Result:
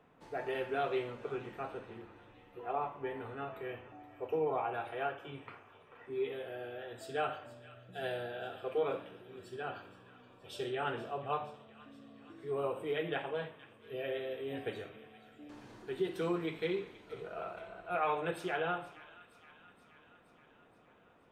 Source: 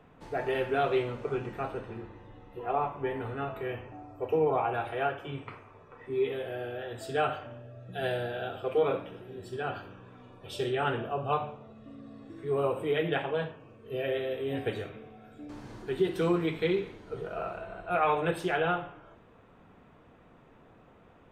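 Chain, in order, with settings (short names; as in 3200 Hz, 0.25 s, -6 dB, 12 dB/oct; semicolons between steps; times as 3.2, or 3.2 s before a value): low shelf 120 Hz -11 dB; thin delay 0.473 s, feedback 64%, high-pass 1600 Hz, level -15.5 dB; gain -6 dB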